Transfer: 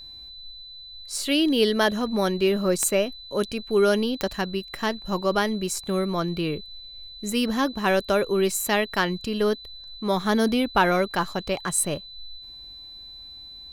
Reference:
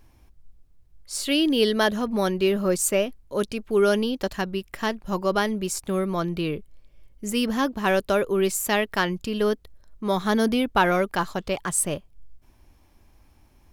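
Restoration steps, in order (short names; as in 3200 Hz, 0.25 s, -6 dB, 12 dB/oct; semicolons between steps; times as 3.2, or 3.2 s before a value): de-click; notch 4000 Hz, Q 30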